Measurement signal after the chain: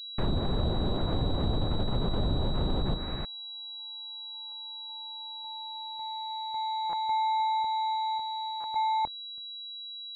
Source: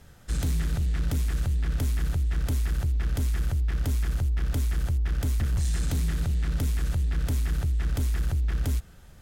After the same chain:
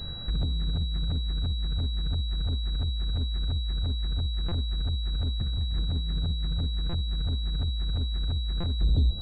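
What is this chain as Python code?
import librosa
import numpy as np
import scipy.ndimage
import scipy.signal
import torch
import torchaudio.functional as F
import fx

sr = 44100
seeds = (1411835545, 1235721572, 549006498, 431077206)

p1 = fx.low_shelf(x, sr, hz=200.0, db=6.5)
p2 = p1 + fx.echo_single(p1, sr, ms=307, db=-8.0, dry=0)
p3 = fx.over_compress(p2, sr, threshold_db=-27.0, ratio=-1.0)
p4 = 10.0 ** (-13.5 / 20.0) * np.tanh(p3 / 10.0 ** (-13.5 / 20.0))
p5 = fx.env_lowpass_down(p4, sr, base_hz=540.0, full_db=-21.0)
p6 = fx.air_absorb(p5, sr, metres=81.0)
p7 = fx.buffer_glitch(p6, sr, at_s=(4.48, 6.89, 8.6), block=256, repeats=6)
y = fx.pwm(p7, sr, carrier_hz=3900.0)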